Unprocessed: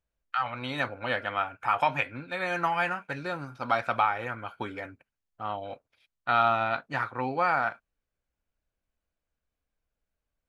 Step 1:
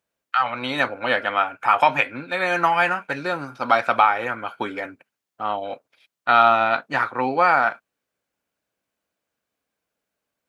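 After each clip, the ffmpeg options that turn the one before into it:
ffmpeg -i in.wav -af "highpass=200,volume=8.5dB" out.wav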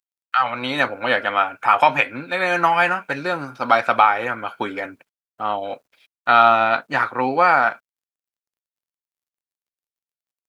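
ffmpeg -i in.wav -af "acrusher=bits=11:mix=0:aa=0.000001,volume=2dB" out.wav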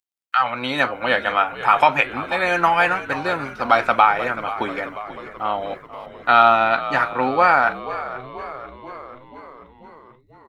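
ffmpeg -i in.wav -filter_complex "[0:a]asplit=8[link_01][link_02][link_03][link_04][link_05][link_06][link_07][link_08];[link_02]adelay=486,afreqshift=-65,volume=-14dB[link_09];[link_03]adelay=972,afreqshift=-130,volume=-18.2dB[link_10];[link_04]adelay=1458,afreqshift=-195,volume=-22.3dB[link_11];[link_05]adelay=1944,afreqshift=-260,volume=-26.5dB[link_12];[link_06]adelay=2430,afreqshift=-325,volume=-30.6dB[link_13];[link_07]adelay=2916,afreqshift=-390,volume=-34.8dB[link_14];[link_08]adelay=3402,afreqshift=-455,volume=-38.9dB[link_15];[link_01][link_09][link_10][link_11][link_12][link_13][link_14][link_15]amix=inputs=8:normalize=0" out.wav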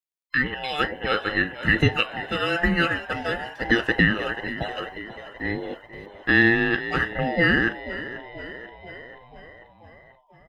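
ffmpeg -i in.wav -af "afftfilt=real='real(if(between(b,1,1008),(2*floor((b-1)/48)+1)*48-b,b),0)':imag='imag(if(between(b,1,1008),(2*floor((b-1)/48)+1)*48-b,b),0)*if(between(b,1,1008),-1,1)':win_size=2048:overlap=0.75,volume=-4.5dB" out.wav

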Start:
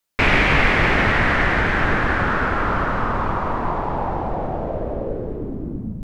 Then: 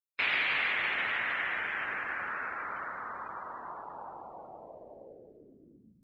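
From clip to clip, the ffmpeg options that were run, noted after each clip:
ffmpeg -i in.wav -af "afftdn=noise_reduction=26:noise_floor=-31,aderivative" out.wav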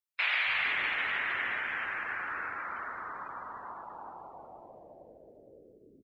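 ffmpeg -i in.wav -filter_complex "[0:a]acrossover=split=180|540[link_01][link_02][link_03];[link_01]adelay=270[link_04];[link_02]adelay=460[link_05];[link_04][link_05][link_03]amix=inputs=3:normalize=0" out.wav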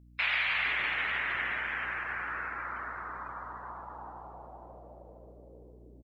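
ffmpeg -i in.wav -filter_complex "[0:a]aeval=exprs='val(0)+0.00178*(sin(2*PI*60*n/s)+sin(2*PI*2*60*n/s)/2+sin(2*PI*3*60*n/s)/3+sin(2*PI*4*60*n/s)/4+sin(2*PI*5*60*n/s)/5)':channel_layout=same,asplit=2[link_01][link_02];[link_02]adelay=532,lowpass=frequency=1300:poles=1,volume=-12.5dB,asplit=2[link_03][link_04];[link_04]adelay=532,lowpass=frequency=1300:poles=1,volume=0.32,asplit=2[link_05][link_06];[link_06]adelay=532,lowpass=frequency=1300:poles=1,volume=0.32[link_07];[link_01][link_03][link_05][link_07]amix=inputs=4:normalize=0" out.wav

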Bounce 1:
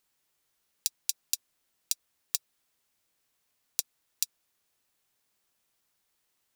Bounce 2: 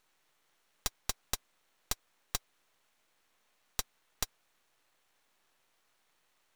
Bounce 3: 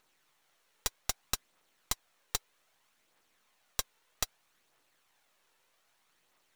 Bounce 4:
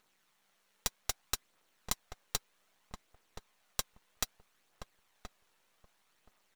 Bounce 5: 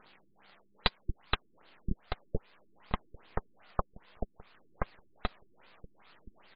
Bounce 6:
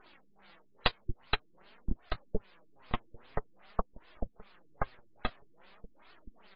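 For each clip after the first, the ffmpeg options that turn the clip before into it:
ffmpeg -i in.wav -filter_complex "[0:a]asplit=2[link_01][link_02];[link_02]highpass=frequency=720:poles=1,volume=20dB,asoftclip=type=tanh:threshold=-2.5dB[link_03];[link_01][link_03]amix=inputs=2:normalize=0,lowpass=frequency=1500:poles=1,volume=-6dB,aeval=exprs='max(val(0),0)':channel_layout=same,bandreject=frequency=4900:width=20,volume=2.5dB" out.wav
ffmpeg -i in.wav -af "lowshelf=frequency=89:gain=-6.5,aphaser=in_gain=1:out_gain=1:delay=2.3:decay=0.33:speed=0.63:type=triangular,volume=1.5dB" out.wav
ffmpeg -i in.wav -filter_complex "[0:a]tremolo=f=200:d=0.519,asplit=2[link_01][link_02];[link_02]adelay=1025,lowpass=frequency=960:poles=1,volume=-6.5dB,asplit=2[link_03][link_04];[link_04]adelay=1025,lowpass=frequency=960:poles=1,volume=0.16,asplit=2[link_05][link_06];[link_06]adelay=1025,lowpass=frequency=960:poles=1,volume=0.16[link_07];[link_01][link_03][link_05][link_07]amix=inputs=4:normalize=0,volume=1dB" out.wav
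ffmpeg -i in.wav -af "alimiter=limit=-18dB:level=0:latency=1:release=399,afftfilt=real='re*lt(b*sr/1024,370*pow(5200/370,0.5+0.5*sin(2*PI*2.5*pts/sr)))':imag='im*lt(b*sr/1024,370*pow(5200/370,0.5+0.5*sin(2*PI*2.5*pts/sr)))':win_size=1024:overlap=0.75,volume=16dB" out.wav
ffmpeg -i in.wav -af "flanger=delay=2.6:depth=6.5:regen=23:speed=0.49:shape=triangular,volume=3.5dB" -ar 32000 -c:a aac -b:a 24k out.aac

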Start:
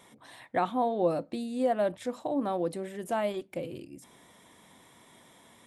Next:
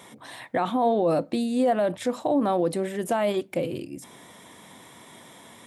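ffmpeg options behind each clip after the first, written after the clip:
ffmpeg -i in.wav -af "highpass=76,alimiter=limit=-23.5dB:level=0:latency=1:release=34,volume=9dB" out.wav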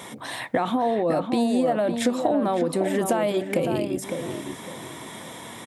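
ffmpeg -i in.wav -filter_complex "[0:a]acompressor=threshold=-28dB:ratio=10,asplit=2[link_01][link_02];[link_02]adelay=557,lowpass=frequency=1900:poles=1,volume=-6dB,asplit=2[link_03][link_04];[link_04]adelay=557,lowpass=frequency=1900:poles=1,volume=0.3,asplit=2[link_05][link_06];[link_06]adelay=557,lowpass=frequency=1900:poles=1,volume=0.3,asplit=2[link_07][link_08];[link_08]adelay=557,lowpass=frequency=1900:poles=1,volume=0.3[link_09];[link_03][link_05][link_07][link_09]amix=inputs=4:normalize=0[link_10];[link_01][link_10]amix=inputs=2:normalize=0,volume=8.5dB" out.wav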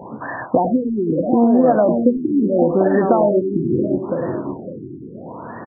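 ffmpeg -i in.wav -filter_complex "[0:a]asplit=2[link_01][link_02];[link_02]adelay=100,highpass=300,lowpass=3400,asoftclip=type=hard:threshold=-18dB,volume=-7dB[link_03];[link_01][link_03]amix=inputs=2:normalize=0,afftfilt=real='re*lt(b*sr/1024,400*pow(1900/400,0.5+0.5*sin(2*PI*0.76*pts/sr)))':imag='im*lt(b*sr/1024,400*pow(1900/400,0.5+0.5*sin(2*PI*0.76*pts/sr)))':win_size=1024:overlap=0.75,volume=8dB" out.wav

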